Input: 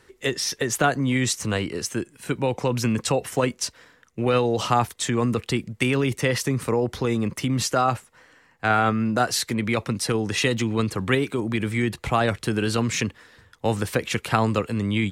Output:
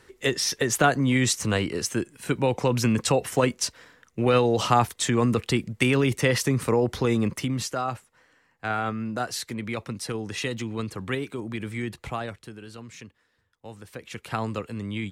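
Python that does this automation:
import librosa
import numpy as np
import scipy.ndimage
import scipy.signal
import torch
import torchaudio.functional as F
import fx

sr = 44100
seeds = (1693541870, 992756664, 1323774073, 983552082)

y = fx.gain(x, sr, db=fx.line((7.26, 0.5), (7.74, -7.5), (12.05, -7.5), (12.59, -19.0), (13.81, -19.0), (14.36, -8.0)))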